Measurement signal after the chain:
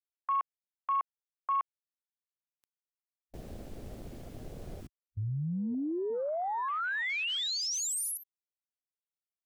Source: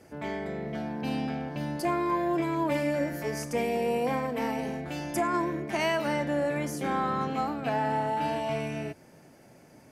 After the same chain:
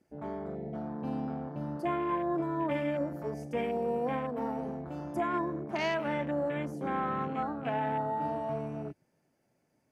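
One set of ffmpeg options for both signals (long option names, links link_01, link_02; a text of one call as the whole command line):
ffmpeg -i in.wav -af "afwtdn=0.0158,volume=-3.5dB" out.wav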